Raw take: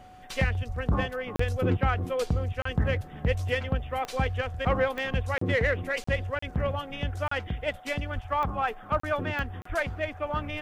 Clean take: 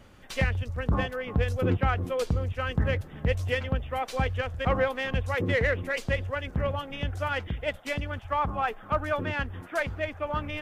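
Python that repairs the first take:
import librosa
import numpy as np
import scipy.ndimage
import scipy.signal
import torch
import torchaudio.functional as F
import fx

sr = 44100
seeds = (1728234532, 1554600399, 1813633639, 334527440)

y = fx.fix_declick_ar(x, sr, threshold=10.0)
y = fx.notch(y, sr, hz=740.0, q=30.0)
y = fx.highpass(y, sr, hz=140.0, slope=24, at=(0.67, 0.79), fade=0.02)
y = fx.highpass(y, sr, hz=140.0, slope=24, at=(8.14, 8.26), fade=0.02)
y = fx.highpass(y, sr, hz=140.0, slope=24, at=(9.68, 9.8), fade=0.02)
y = fx.fix_interpolate(y, sr, at_s=(1.36, 2.62, 5.38, 6.04, 6.39, 7.28, 9.0, 9.62), length_ms=34.0)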